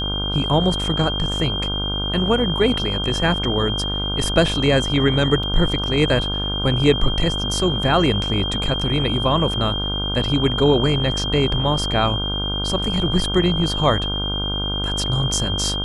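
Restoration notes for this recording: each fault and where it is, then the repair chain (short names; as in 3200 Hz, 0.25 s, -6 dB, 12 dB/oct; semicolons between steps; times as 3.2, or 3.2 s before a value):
buzz 50 Hz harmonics 31 -26 dBFS
tone 3200 Hz -24 dBFS
5.43 gap 4.3 ms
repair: de-hum 50 Hz, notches 31; notch 3200 Hz, Q 30; interpolate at 5.43, 4.3 ms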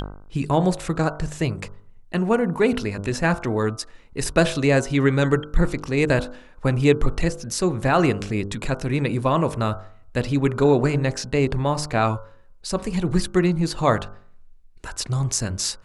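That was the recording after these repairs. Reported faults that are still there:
none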